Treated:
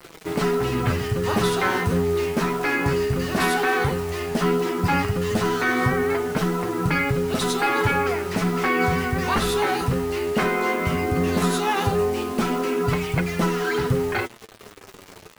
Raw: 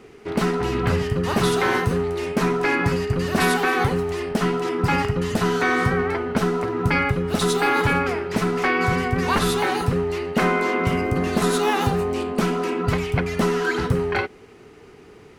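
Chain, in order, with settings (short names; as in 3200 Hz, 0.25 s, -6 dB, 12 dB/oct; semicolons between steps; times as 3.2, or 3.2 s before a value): in parallel at -1.5 dB: limiter -20.5 dBFS, peak gain reduction 11.5 dB; on the sum: bit-crush 6-bit; flange 0.15 Hz, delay 5.7 ms, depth 9.8 ms, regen +37%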